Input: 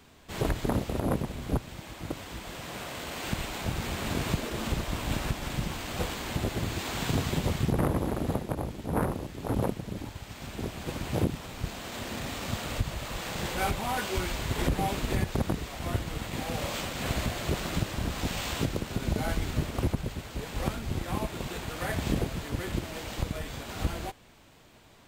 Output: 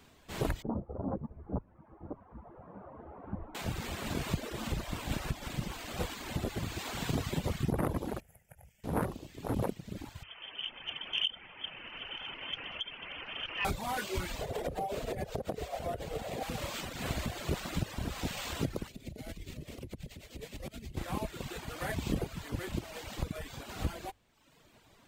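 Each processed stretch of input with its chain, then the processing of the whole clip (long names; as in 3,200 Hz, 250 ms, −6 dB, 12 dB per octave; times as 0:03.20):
0:00.62–0:03.55: low-pass filter 1,100 Hz 24 dB per octave + string-ensemble chorus
0:08.20–0:08.84: guitar amp tone stack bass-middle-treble 5-5-5 + phaser with its sweep stopped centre 1,100 Hz, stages 6
0:10.23–0:13.65: high-pass filter 120 Hz 24 dB per octave + voice inversion scrambler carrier 3,300 Hz + saturating transformer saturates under 860 Hz
0:14.41–0:16.43: flat-topped bell 560 Hz +12.5 dB 1.1 octaves + downward compressor 10 to 1, threshold −25 dBFS + amplitude tremolo 7.4 Hz, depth 31%
0:18.88–0:20.97: flat-topped bell 1,100 Hz −10 dB 1.3 octaves + downward compressor, threshold −32 dBFS + amplitude tremolo 9.6 Hz, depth 49%
whole clip: mains-hum notches 50/100 Hz; reverb reduction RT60 0.95 s; level −3 dB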